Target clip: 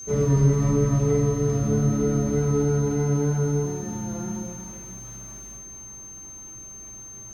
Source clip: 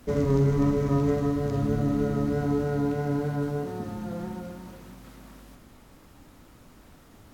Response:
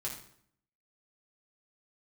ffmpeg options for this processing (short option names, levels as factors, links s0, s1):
-filter_complex "[0:a]aeval=exprs='val(0)+0.0224*sin(2*PI*6300*n/s)':c=same[s0];[1:a]atrim=start_sample=2205[s1];[s0][s1]afir=irnorm=-1:irlink=0"